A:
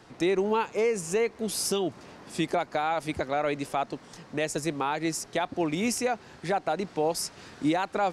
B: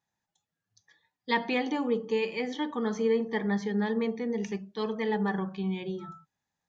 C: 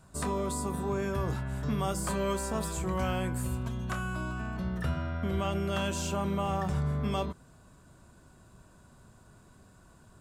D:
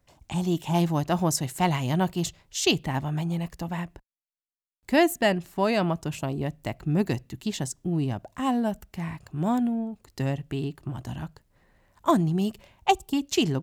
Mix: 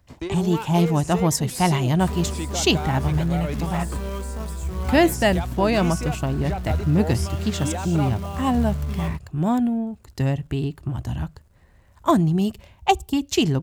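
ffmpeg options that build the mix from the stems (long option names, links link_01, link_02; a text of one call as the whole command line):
ffmpeg -i stem1.wav -i stem2.wav -i stem3.wav -i stem4.wav -filter_complex "[0:a]acompressor=mode=upward:threshold=-30dB:ratio=2.5,asoftclip=type=tanh:threshold=-21dB,volume=-2.5dB[link_01];[1:a]acompressor=threshold=-32dB:ratio=6,volume=-11.5dB[link_02];[2:a]aeval=exprs='sgn(val(0))*max(abs(val(0))-0.00188,0)':channel_layout=same,acrusher=bits=3:mode=log:mix=0:aa=0.000001,adelay=1850,volume=-3dB[link_03];[3:a]volume=3dB,asplit=2[link_04][link_05];[link_05]apad=whole_len=358367[link_06];[link_01][link_06]sidechaingate=range=-33dB:threshold=-52dB:ratio=16:detection=peak[link_07];[link_07][link_02][link_03][link_04]amix=inputs=4:normalize=0,equalizer=frequency=70:width=1.3:gain=13.5" out.wav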